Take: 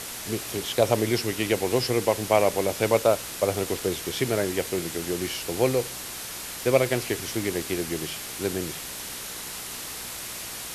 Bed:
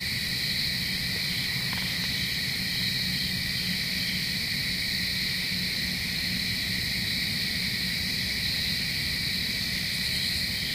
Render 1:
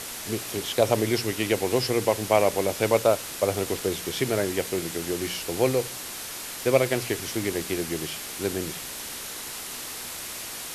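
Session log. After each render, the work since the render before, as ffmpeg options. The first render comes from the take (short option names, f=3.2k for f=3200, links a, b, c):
-af "bandreject=f=60:t=h:w=4,bandreject=f=120:t=h:w=4,bandreject=f=180:t=h:w=4"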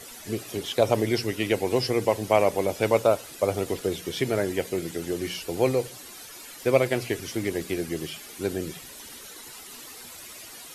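-af "afftdn=nr=12:nf=-37"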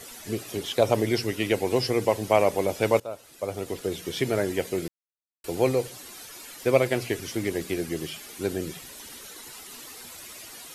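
-filter_complex "[0:a]asplit=4[a][b][c][d];[a]atrim=end=3,asetpts=PTS-STARTPTS,afade=t=out:st=2.996:d=0.004:c=hsin:silence=0.112202[e];[b]atrim=start=3:end=4.88,asetpts=PTS-STARTPTS,afade=t=in:d=1.17:silence=0.112202,afade=t=out:st=1.876:d=0.004:c=hsin[f];[c]atrim=start=4.88:end=5.44,asetpts=PTS-STARTPTS,volume=0[g];[d]atrim=start=5.44,asetpts=PTS-STARTPTS,afade=t=in:d=0.004:c=hsin[h];[e][f][g][h]concat=n=4:v=0:a=1"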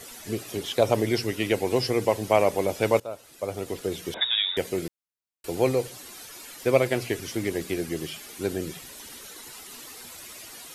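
-filter_complex "[0:a]asettb=1/sr,asplit=3[a][b][c];[a]atrim=end=4.144[d];[b]atrim=start=4.14:end=4.57,asetpts=PTS-STARTPTS,afade=t=in:d=0.004:c=qsin,afade=t=out:st=0.426:d=0.004:c=qsin,lowpass=f=3.3k:t=q:w=0.5098,lowpass=f=3.3k:t=q:w=0.6013,lowpass=f=3.3k:t=q:w=0.9,lowpass=f=3.3k:t=q:w=2.563,afreqshift=-3900[e];[c]atrim=start=4.566[f];[d][e]acrossfade=d=0.004:c1=hsin:c2=qsin[g];[g][f]acrossfade=d=0.004:c1=qsin:c2=hsin"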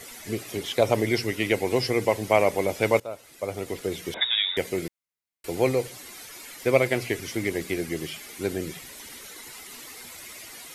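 -af "equalizer=f=2.1k:t=o:w=0.26:g=7"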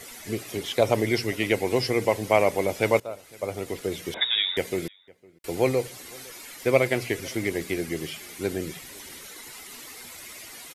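-filter_complex "[0:a]asplit=2[a][b];[b]adelay=507.3,volume=-25dB,highshelf=f=4k:g=-11.4[c];[a][c]amix=inputs=2:normalize=0"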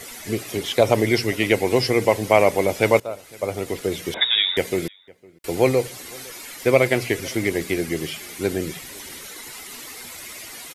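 -af "volume=5dB,alimiter=limit=-3dB:level=0:latency=1"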